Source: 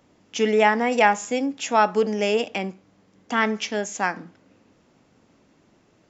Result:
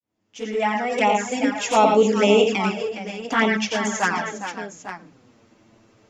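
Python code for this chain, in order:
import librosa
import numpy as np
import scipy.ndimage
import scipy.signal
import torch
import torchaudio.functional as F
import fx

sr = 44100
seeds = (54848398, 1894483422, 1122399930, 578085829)

y = fx.fade_in_head(x, sr, length_s=1.63)
y = fx.echo_multitap(y, sr, ms=(89, 113, 410, 542, 850), db=(-6.0, -7.5, -9.5, -14.5, -11.5))
y = fx.env_flanger(y, sr, rest_ms=9.3, full_db=-16.0)
y = y * librosa.db_to_amplitude(5.0)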